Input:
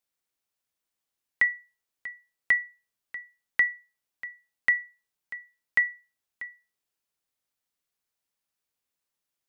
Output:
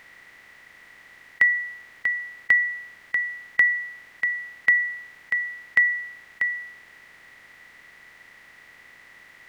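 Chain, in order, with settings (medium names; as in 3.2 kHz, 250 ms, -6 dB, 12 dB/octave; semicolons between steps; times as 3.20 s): spectral levelling over time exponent 0.4; trim +3 dB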